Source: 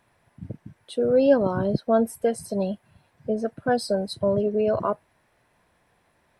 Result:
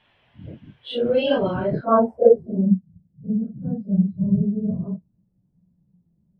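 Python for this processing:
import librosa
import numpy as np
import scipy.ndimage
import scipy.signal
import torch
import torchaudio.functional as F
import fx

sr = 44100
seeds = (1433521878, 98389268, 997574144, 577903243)

y = fx.phase_scramble(x, sr, seeds[0], window_ms=100)
y = fx.peak_eq(y, sr, hz=1000.0, db=-8.0, octaves=1.6, at=(2.73, 3.39))
y = fx.filter_sweep_lowpass(y, sr, from_hz=3100.0, to_hz=180.0, start_s=1.51, end_s=2.74, q=6.7)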